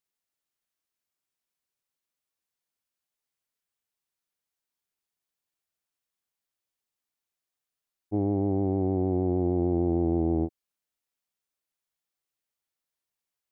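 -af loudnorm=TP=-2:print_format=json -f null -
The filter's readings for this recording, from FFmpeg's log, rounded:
"input_i" : "-27.0",
"input_tp" : "-15.2",
"input_lra" : "6.7",
"input_thresh" : "-37.0",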